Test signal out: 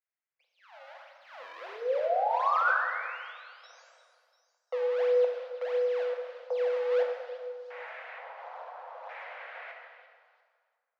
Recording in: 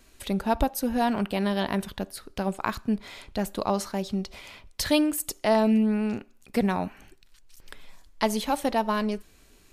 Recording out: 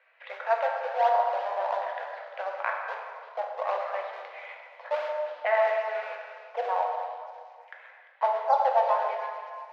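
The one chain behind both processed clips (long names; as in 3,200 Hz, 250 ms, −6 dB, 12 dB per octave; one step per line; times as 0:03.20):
delay that plays each chunk backwards 147 ms, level −12 dB
auto-filter low-pass square 0.55 Hz 940–2,100 Hz
in parallel at −8.5 dB: sample-and-hold swept by an LFO 37×, swing 160% 1.5 Hz
on the sum: Chebyshev high-pass with heavy ripple 490 Hz, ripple 3 dB
high-frequency loss of the air 270 metres
echo through a band-pass that steps 346 ms, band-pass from 3,600 Hz, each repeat 0.7 octaves, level −10 dB
dense smooth reverb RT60 1.9 s, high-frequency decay 0.6×, DRR 0 dB
level −2 dB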